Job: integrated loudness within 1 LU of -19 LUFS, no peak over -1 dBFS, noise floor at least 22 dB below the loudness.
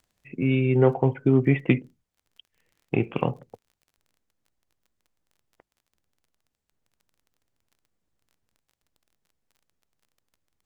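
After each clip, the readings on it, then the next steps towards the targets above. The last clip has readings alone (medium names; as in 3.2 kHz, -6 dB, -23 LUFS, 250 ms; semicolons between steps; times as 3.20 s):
tick rate 24 per s; loudness -23.5 LUFS; peak level -6.0 dBFS; loudness target -19.0 LUFS
-> de-click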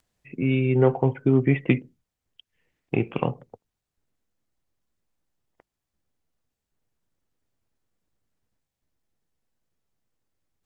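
tick rate 0.094 per s; loudness -23.5 LUFS; peak level -6.0 dBFS; loudness target -19.0 LUFS
-> trim +4.5 dB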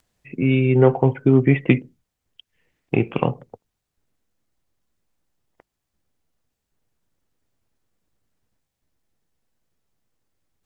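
loudness -19.0 LUFS; peak level -1.5 dBFS; noise floor -81 dBFS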